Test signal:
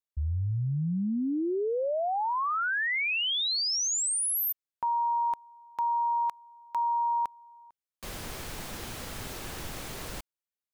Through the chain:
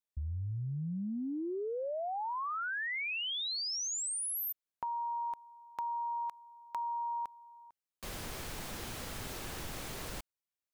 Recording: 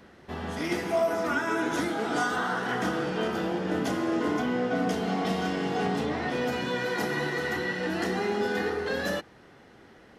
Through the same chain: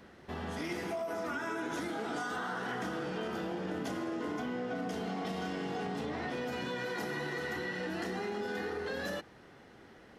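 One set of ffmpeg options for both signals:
-af "acompressor=threshold=0.02:ratio=6:attack=27:release=55:knee=6:detection=rms,volume=0.75"

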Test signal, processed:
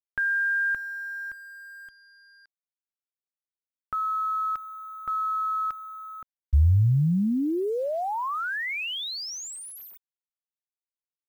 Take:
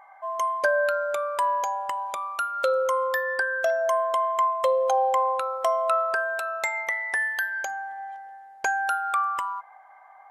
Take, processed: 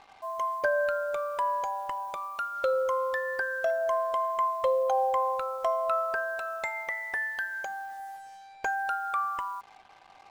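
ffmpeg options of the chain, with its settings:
-af "aemphasis=mode=reproduction:type=bsi,acrusher=bits=7:mix=0:aa=0.5,volume=0.596"

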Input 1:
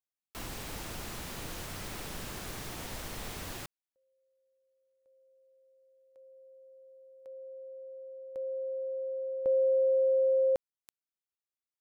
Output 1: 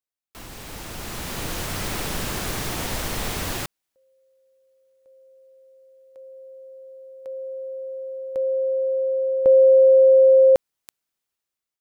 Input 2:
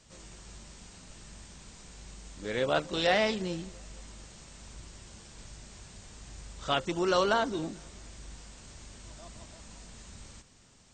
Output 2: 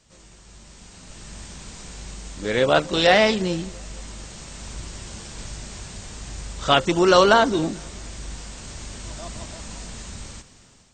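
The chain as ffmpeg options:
-af "dynaudnorm=f=470:g=5:m=4.47"

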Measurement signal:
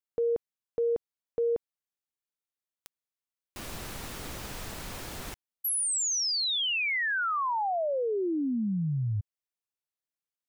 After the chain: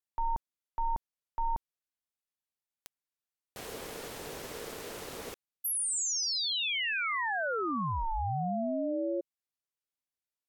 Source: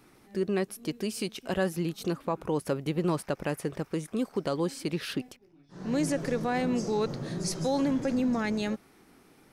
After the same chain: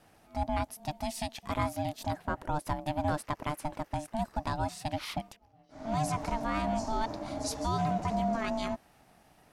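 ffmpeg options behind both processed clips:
-af "aeval=exprs='val(0)*sin(2*PI*450*n/s)':c=same"

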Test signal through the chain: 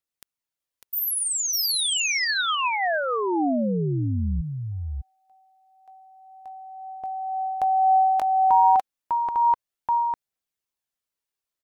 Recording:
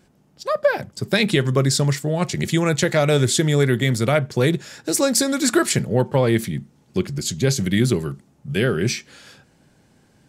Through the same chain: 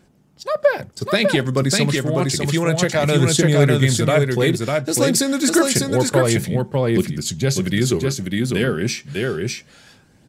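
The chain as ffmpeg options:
-af "aecho=1:1:600:0.708,aphaser=in_gain=1:out_gain=1:delay=4.3:decay=0.25:speed=0.29:type=triangular"

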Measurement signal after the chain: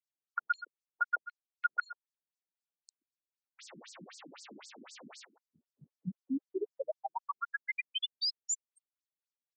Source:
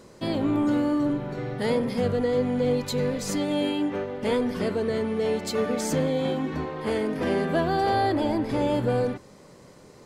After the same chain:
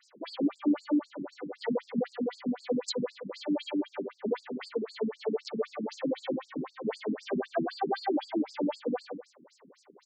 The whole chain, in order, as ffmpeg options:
-filter_complex "[0:a]asplit=2[s0][s1];[s1]adelay=130,highpass=300,lowpass=3400,asoftclip=type=hard:threshold=0.0708,volume=0.224[s2];[s0][s2]amix=inputs=2:normalize=0,afftfilt=real='re*between(b*sr/1024,230*pow(6300/230,0.5+0.5*sin(2*PI*3.9*pts/sr))/1.41,230*pow(6300/230,0.5+0.5*sin(2*PI*3.9*pts/sr))*1.41)':imag='im*between(b*sr/1024,230*pow(6300/230,0.5+0.5*sin(2*PI*3.9*pts/sr))/1.41,230*pow(6300/230,0.5+0.5*sin(2*PI*3.9*pts/sr))*1.41)':win_size=1024:overlap=0.75"

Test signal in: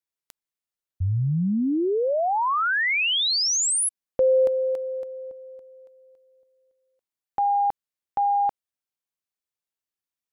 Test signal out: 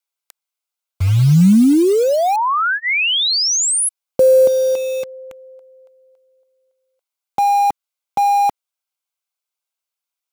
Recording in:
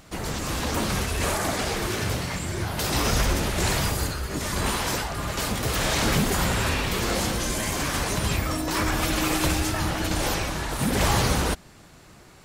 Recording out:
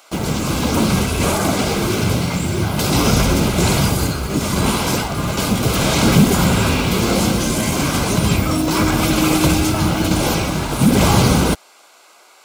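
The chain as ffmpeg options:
-filter_complex "[0:a]highpass=f=54:p=1,equalizer=f=190:w=0.7:g=8,acrossover=split=540|3100[s0][s1][s2];[s0]acrusher=bits=5:mix=0:aa=0.000001[s3];[s3][s1][s2]amix=inputs=3:normalize=0,asuperstop=centerf=1800:order=4:qfactor=5.9,volume=2"

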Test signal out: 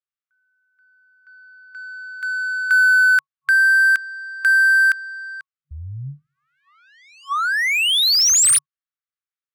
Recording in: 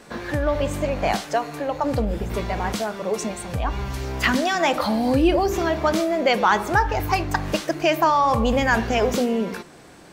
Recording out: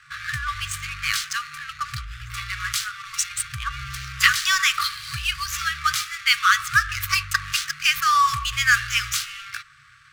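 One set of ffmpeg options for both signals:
-af "aemphasis=mode=production:type=bsi,adynamicsmooth=sensitivity=7.5:basefreq=1700,afftfilt=real='re*(1-between(b*sr/4096,150,1100))':imag='im*(1-between(b*sr/4096,150,1100))':win_size=4096:overlap=0.75,volume=1.58"

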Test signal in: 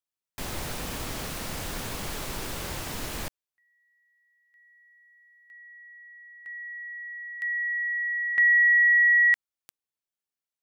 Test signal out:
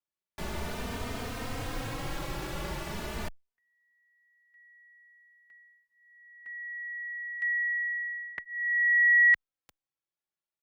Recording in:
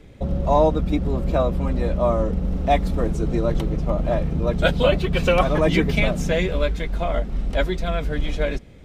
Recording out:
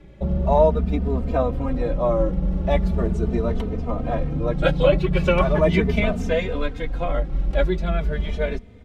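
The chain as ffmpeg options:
-filter_complex "[0:a]highshelf=f=4200:g=-11.5,asplit=2[s0][s1];[s1]adelay=3.1,afreqshift=0.39[s2];[s0][s2]amix=inputs=2:normalize=1,volume=1.41"

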